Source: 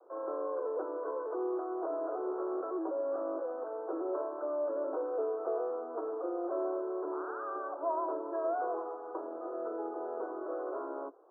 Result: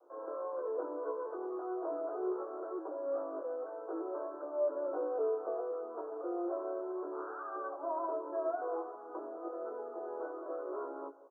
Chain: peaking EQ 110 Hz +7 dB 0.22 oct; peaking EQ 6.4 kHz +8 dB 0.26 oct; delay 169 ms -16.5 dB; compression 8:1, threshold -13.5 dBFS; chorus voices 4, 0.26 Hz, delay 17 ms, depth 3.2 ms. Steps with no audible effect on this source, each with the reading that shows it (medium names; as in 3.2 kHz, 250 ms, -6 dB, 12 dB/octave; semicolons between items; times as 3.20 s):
peaking EQ 110 Hz: input has nothing below 240 Hz; peaking EQ 6.4 kHz: input has nothing above 1.6 kHz; compression, threshold -13.5 dBFS: peak at its input -23.0 dBFS